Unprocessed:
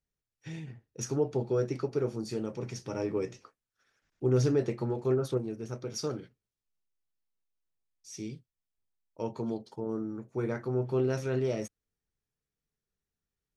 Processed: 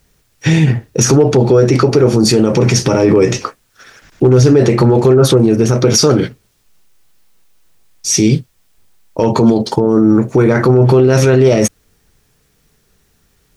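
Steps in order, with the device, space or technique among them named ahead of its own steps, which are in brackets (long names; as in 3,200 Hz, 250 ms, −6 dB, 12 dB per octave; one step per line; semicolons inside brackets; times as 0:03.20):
loud club master (downward compressor 2.5 to 1, threshold −31 dBFS, peak gain reduction 7 dB; hard clipping −24.5 dBFS, distortion −32 dB; boost into a limiter +34 dB)
level −1 dB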